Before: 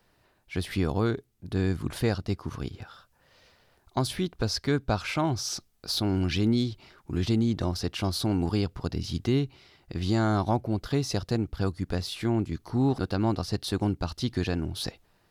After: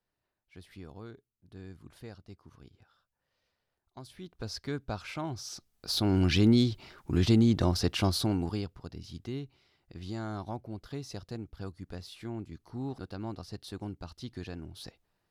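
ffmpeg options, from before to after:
ffmpeg -i in.wav -af "volume=2dB,afade=type=in:start_time=4.13:duration=0.4:silence=0.298538,afade=type=in:start_time=5.56:duration=0.73:silence=0.266073,afade=type=out:start_time=7.99:duration=0.43:silence=0.446684,afade=type=out:start_time=8.42:duration=0.38:silence=0.421697" out.wav

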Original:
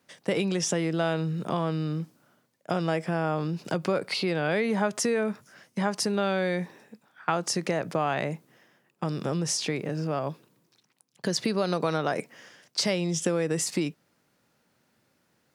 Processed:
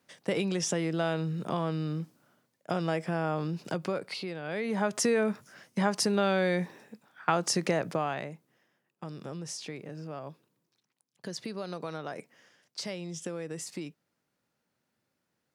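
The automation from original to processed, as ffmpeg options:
ffmpeg -i in.wav -af "volume=9dB,afade=type=out:start_time=3.56:duration=0.86:silence=0.354813,afade=type=in:start_time=4.42:duration=0.66:silence=0.251189,afade=type=out:start_time=7.73:duration=0.58:silence=0.281838" out.wav

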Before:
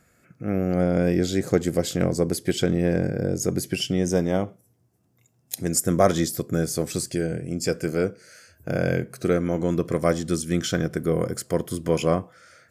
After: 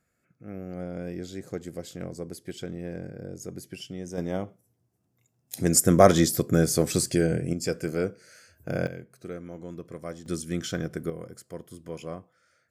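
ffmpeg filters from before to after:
ffmpeg -i in.wav -af "asetnsamples=nb_out_samples=441:pad=0,asendcmd='4.18 volume volume -7dB;5.55 volume volume 2.5dB;7.53 volume volume -4dB;8.87 volume volume -16dB;10.26 volume volume -6.5dB;11.1 volume volume -15.5dB',volume=-14dB" out.wav

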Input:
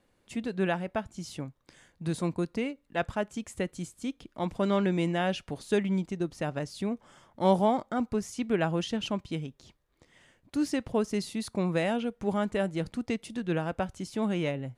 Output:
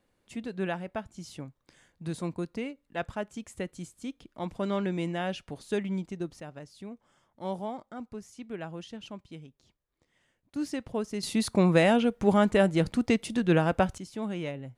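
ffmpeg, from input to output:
ffmpeg -i in.wav -af "asetnsamples=nb_out_samples=441:pad=0,asendcmd='6.4 volume volume -11dB;10.56 volume volume -4dB;11.23 volume volume 6.5dB;13.98 volume volume -4.5dB',volume=-3.5dB" out.wav

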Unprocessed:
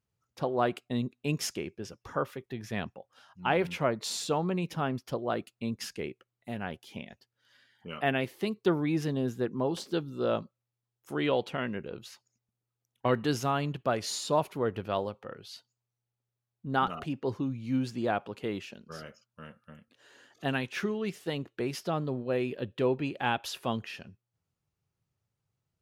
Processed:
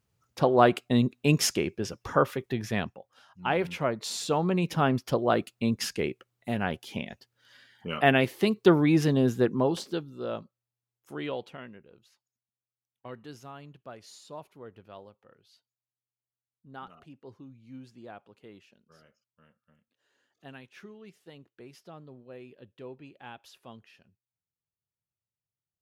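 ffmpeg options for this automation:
ffmpeg -i in.wav -af "volume=15dB,afade=type=out:start_time=2.54:duration=0.44:silence=0.398107,afade=type=in:start_time=4.13:duration=0.76:silence=0.446684,afade=type=out:start_time=9.44:duration=0.64:silence=0.251189,afade=type=out:start_time=11.19:duration=0.64:silence=0.281838" out.wav

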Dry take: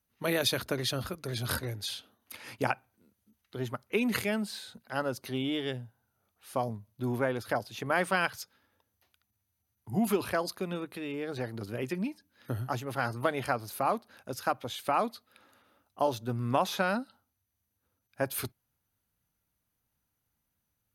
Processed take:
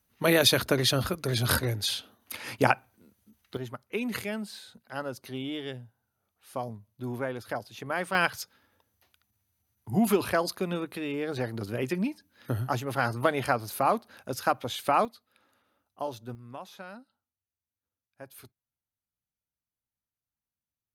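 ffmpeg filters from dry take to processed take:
ffmpeg -i in.wav -af "asetnsamples=nb_out_samples=441:pad=0,asendcmd='3.57 volume volume -3dB;8.15 volume volume 4dB;15.05 volume volume -6dB;16.35 volume volume -15dB',volume=7dB" out.wav

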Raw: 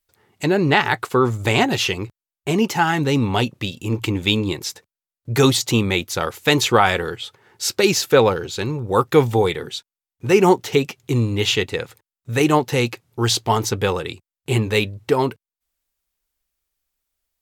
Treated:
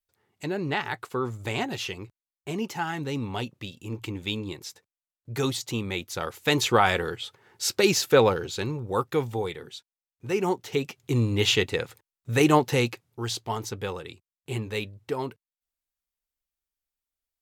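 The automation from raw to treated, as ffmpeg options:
ffmpeg -i in.wav -af "volume=4.5dB,afade=type=in:start_time=5.8:duration=1.17:silence=0.421697,afade=type=out:start_time=8.49:duration=0.71:silence=0.421697,afade=type=in:start_time=10.6:duration=0.81:silence=0.354813,afade=type=out:start_time=12.68:duration=0.55:silence=0.354813" out.wav

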